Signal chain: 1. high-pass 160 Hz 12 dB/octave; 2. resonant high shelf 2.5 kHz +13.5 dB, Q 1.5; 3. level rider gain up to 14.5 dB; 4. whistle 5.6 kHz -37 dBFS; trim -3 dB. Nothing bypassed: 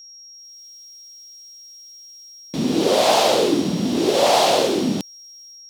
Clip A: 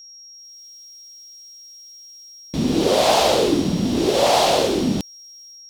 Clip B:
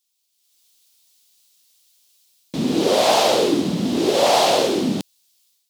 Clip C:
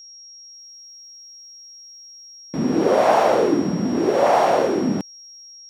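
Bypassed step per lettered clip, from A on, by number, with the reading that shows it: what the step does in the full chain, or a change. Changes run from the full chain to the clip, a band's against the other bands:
1, 125 Hz band +3.5 dB; 4, momentary loudness spread change -1 LU; 2, 4 kHz band -11.0 dB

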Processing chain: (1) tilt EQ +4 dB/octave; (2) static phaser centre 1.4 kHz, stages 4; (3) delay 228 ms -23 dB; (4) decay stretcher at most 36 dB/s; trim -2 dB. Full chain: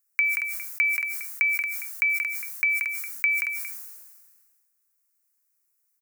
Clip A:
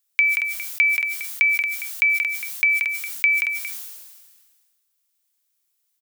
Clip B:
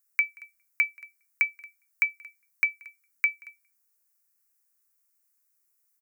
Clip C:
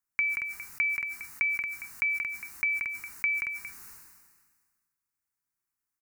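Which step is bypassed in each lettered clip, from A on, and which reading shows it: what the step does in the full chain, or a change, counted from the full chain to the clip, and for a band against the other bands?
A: 2, loudness change +5.0 LU; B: 4, crest factor change +5.5 dB; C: 1, momentary loudness spread change +1 LU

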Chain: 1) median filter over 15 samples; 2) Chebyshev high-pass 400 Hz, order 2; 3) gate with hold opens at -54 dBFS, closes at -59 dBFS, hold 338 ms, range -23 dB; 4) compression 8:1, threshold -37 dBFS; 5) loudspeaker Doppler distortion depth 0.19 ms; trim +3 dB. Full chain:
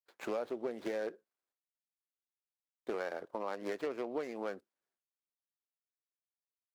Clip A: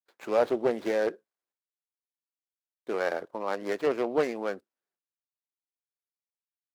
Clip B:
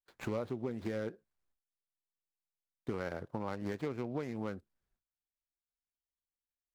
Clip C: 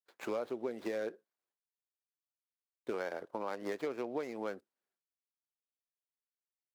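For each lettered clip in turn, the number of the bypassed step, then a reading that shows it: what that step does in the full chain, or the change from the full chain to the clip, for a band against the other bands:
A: 4, crest factor change +2.0 dB; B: 2, 125 Hz band +19.5 dB; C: 5, 125 Hz band +2.5 dB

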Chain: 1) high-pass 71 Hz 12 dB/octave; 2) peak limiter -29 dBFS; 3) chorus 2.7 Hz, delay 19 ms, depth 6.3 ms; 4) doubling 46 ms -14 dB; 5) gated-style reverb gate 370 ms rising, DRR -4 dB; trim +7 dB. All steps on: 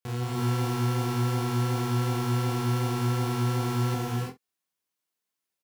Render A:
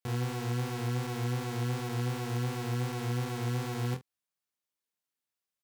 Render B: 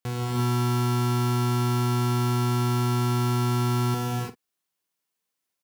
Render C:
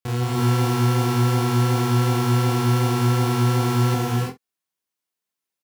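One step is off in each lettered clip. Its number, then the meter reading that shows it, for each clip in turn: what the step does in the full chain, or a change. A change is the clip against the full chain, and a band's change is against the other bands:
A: 5, momentary loudness spread change -2 LU; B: 3, 2 kHz band -1.5 dB; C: 2, mean gain reduction 7.5 dB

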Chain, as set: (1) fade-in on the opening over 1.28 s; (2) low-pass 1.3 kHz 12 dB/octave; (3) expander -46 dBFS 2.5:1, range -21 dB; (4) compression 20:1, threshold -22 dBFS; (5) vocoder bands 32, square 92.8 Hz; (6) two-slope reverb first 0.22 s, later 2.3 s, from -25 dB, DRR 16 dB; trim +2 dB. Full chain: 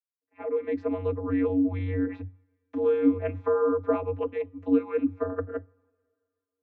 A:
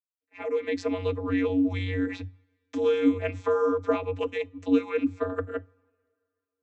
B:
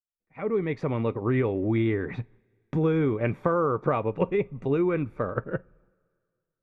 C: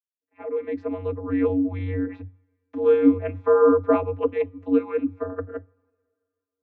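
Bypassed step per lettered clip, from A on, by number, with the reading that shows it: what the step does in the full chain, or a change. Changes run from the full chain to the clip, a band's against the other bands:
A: 2, 2 kHz band +7.0 dB; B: 5, 250 Hz band -7.0 dB; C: 4, mean gain reduction 2.5 dB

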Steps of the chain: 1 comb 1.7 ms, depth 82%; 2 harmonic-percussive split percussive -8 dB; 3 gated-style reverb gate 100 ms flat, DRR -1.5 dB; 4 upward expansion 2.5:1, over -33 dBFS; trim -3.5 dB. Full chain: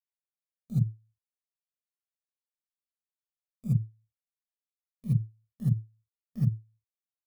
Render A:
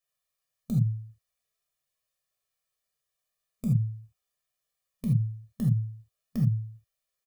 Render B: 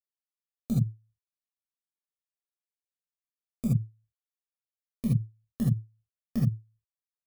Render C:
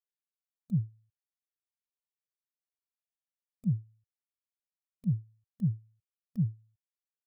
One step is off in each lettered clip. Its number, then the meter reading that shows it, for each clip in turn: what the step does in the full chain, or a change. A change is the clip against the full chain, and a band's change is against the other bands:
4, loudness change +1.5 LU; 2, momentary loudness spread change -4 LU; 3, momentary loudness spread change -7 LU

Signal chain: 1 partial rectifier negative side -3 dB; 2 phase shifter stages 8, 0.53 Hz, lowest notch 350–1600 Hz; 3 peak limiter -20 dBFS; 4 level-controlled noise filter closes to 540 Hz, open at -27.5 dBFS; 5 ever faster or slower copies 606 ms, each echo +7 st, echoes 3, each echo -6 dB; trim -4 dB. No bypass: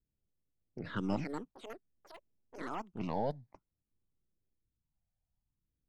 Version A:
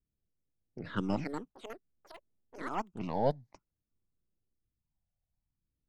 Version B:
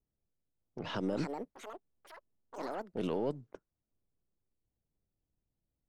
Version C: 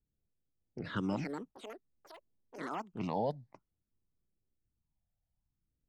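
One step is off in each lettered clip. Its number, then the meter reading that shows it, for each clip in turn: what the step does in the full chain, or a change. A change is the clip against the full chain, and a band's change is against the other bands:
3, crest factor change +4.0 dB; 2, 4 kHz band +5.5 dB; 1, distortion -16 dB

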